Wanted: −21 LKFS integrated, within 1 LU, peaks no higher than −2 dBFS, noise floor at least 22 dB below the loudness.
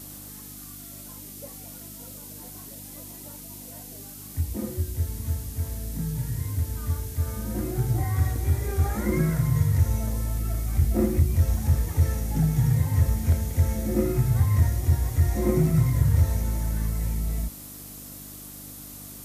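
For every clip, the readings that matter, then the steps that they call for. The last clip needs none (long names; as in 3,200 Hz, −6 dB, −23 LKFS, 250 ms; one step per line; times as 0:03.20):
mains hum 50 Hz; hum harmonics up to 300 Hz; level of the hum −46 dBFS; background noise floor −42 dBFS; target noise floor −48 dBFS; integrated loudness −25.5 LKFS; sample peak −10.5 dBFS; target loudness −21.0 LKFS
→ hum removal 50 Hz, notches 6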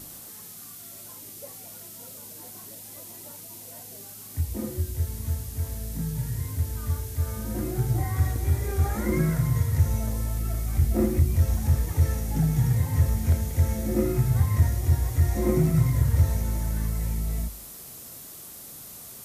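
mains hum none found; background noise floor −43 dBFS; target noise floor −48 dBFS
→ broadband denoise 6 dB, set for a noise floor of −43 dBFS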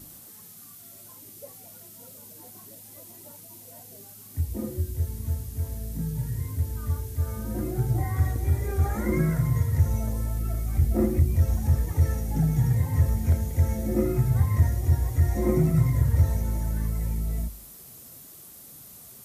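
background noise floor −47 dBFS; target noise floor −48 dBFS
→ broadband denoise 6 dB, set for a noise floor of −47 dBFS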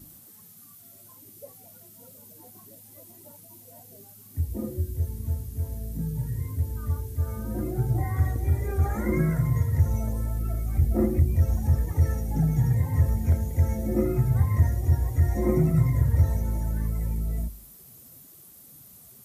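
background noise floor −50 dBFS; integrated loudness −26.0 LKFS; sample peak −9.5 dBFS; target loudness −21.0 LKFS
→ level +5 dB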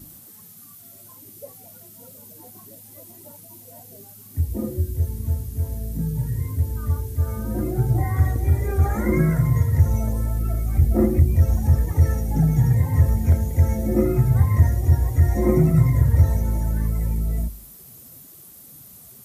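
integrated loudness −21.0 LKFS; sample peak −4.5 dBFS; background noise floor −45 dBFS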